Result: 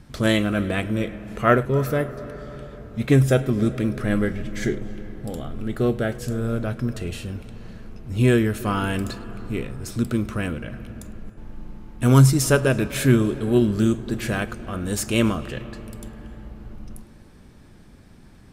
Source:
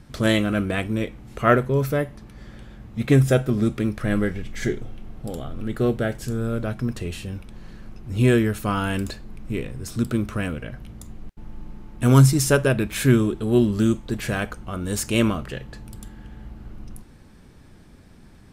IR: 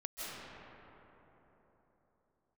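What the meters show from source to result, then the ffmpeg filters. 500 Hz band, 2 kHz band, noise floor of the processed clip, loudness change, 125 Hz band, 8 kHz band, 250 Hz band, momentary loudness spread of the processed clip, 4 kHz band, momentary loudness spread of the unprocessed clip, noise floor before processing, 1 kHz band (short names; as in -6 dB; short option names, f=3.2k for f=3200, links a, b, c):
0.0 dB, 0.0 dB, -48 dBFS, 0.0 dB, 0.0 dB, 0.0 dB, 0.0 dB, 20 LU, 0.0 dB, 22 LU, -48 dBFS, 0.0 dB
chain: -filter_complex "[0:a]asplit=2[a][b];[1:a]atrim=start_sample=2205,highshelf=f=9.2k:g=-5.5,adelay=105[c];[b][c]afir=irnorm=-1:irlink=0,volume=-16.5dB[d];[a][d]amix=inputs=2:normalize=0"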